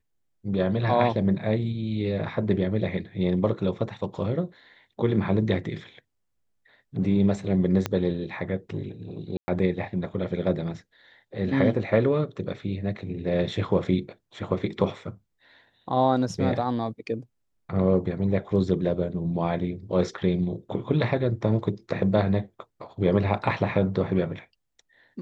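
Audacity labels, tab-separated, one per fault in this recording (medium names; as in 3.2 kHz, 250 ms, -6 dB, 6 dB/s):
7.860000	7.860000	pop -11 dBFS
9.370000	9.480000	dropout 110 ms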